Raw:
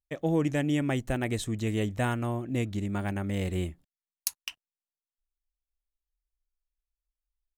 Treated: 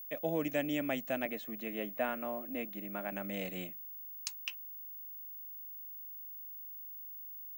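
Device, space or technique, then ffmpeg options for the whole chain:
old television with a line whistle: -filter_complex "[0:a]asettb=1/sr,asplit=3[a][b][c];[a]atrim=end=1.254[d];[b]atrim=start=1.25:end=3.12,asetpts=PTS-STARTPTS,afade=t=in:d=0.004:c=qsin,afade=t=out:st=1.866:d=0.004:c=qsin,acrossover=split=200 2700:gain=0.224 1 0.224[e][f][g];[e][f][g]amix=inputs=3:normalize=0[h];[c]atrim=start=3.116[i];[d][h]acrossfade=d=0.004:c1=hsin:c2=qsin[j];[j][i]acrossfade=d=0.004:c1=qsin:c2=hsin,highpass=f=200:w=0.5412,highpass=f=200:w=1.3066,equalizer=f=370:t=q:w=4:g=-10,equalizer=f=620:t=q:w=4:g=7,equalizer=f=920:t=q:w=4:g=-4,equalizer=f=2.5k:t=q:w=4:g=5,lowpass=f=7.5k:w=0.5412,lowpass=f=7.5k:w=1.3066,aeval=exprs='val(0)+0.0112*sin(2*PI*15625*n/s)':c=same,volume=-5dB"

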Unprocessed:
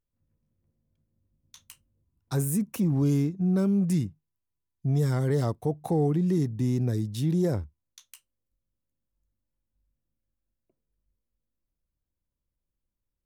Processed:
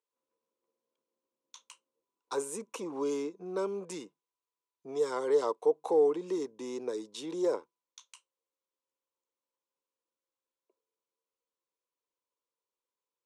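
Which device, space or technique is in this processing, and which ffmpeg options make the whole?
phone speaker on a table: -af "highpass=f=390:w=0.5412,highpass=f=390:w=1.3066,equalizer=f=460:t=q:w=4:g=7,equalizer=f=690:t=q:w=4:g=-7,equalizer=f=1k:t=q:w=4:g=10,equalizer=f=1.8k:t=q:w=4:g=-8,equalizer=f=4.9k:t=q:w=4:g=-4,lowpass=f=8.1k:w=0.5412,lowpass=f=8.1k:w=1.3066"

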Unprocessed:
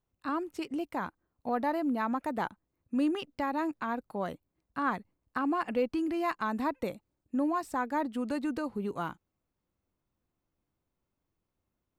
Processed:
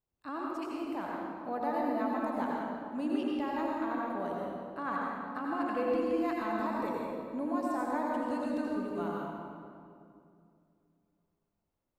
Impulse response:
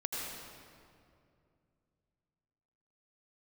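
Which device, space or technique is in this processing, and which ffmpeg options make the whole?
stairwell: -filter_complex "[0:a]equalizer=f=640:t=o:w=1.1:g=3.5[a];[1:a]atrim=start_sample=2205[b];[a][b]afir=irnorm=-1:irlink=0,volume=-6.5dB"

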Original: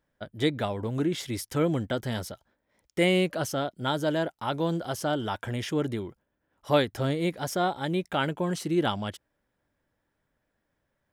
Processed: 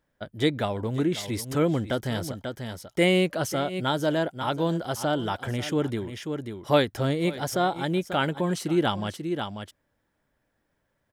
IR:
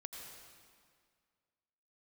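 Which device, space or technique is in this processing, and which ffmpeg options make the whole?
ducked delay: -filter_complex "[0:a]asplit=3[a][b][c];[b]adelay=540,volume=-6dB[d];[c]apad=whole_len=514520[e];[d][e]sidechaincompress=threshold=-42dB:ratio=5:attack=47:release=122[f];[a][f]amix=inputs=2:normalize=0,volume=2dB"

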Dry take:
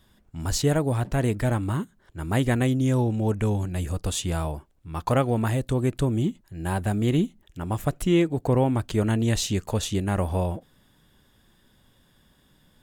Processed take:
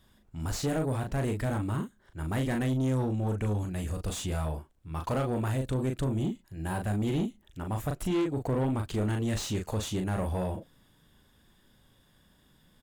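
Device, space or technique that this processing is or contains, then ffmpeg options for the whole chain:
saturation between pre-emphasis and de-emphasis: -filter_complex "[0:a]highshelf=f=2.4k:g=12,asplit=2[a][b];[b]adelay=38,volume=-6dB[c];[a][c]amix=inputs=2:normalize=0,asoftclip=type=tanh:threshold=-20dB,highshelf=f=2.4k:g=-12,volume=-3.5dB"

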